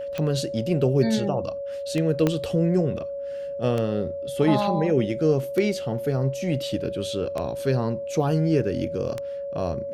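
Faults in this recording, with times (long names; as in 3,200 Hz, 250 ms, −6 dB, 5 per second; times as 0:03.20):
scratch tick 33 1/3 rpm −15 dBFS
whistle 560 Hz −29 dBFS
0:02.27: click −9 dBFS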